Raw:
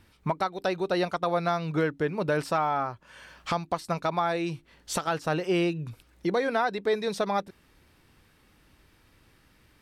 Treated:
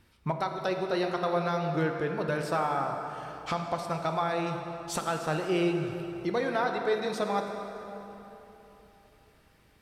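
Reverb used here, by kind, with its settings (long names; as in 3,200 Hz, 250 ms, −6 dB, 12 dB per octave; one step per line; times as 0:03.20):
dense smooth reverb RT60 3.6 s, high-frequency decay 0.65×, DRR 3.5 dB
level −3.5 dB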